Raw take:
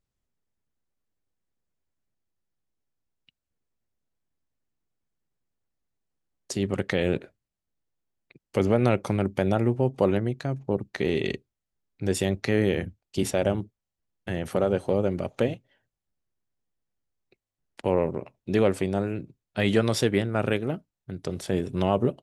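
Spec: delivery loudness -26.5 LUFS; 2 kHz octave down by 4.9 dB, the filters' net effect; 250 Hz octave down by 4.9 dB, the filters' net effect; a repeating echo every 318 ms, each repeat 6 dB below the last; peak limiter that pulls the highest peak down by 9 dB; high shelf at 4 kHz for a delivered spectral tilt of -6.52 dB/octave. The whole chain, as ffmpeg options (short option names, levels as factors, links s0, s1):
-af "equalizer=f=250:t=o:g=-7,equalizer=f=2000:t=o:g=-4,highshelf=f=4000:g=-8.5,alimiter=limit=0.119:level=0:latency=1,aecho=1:1:318|636|954|1272|1590|1908:0.501|0.251|0.125|0.0626|0.0313|0.0157,volume=1.88"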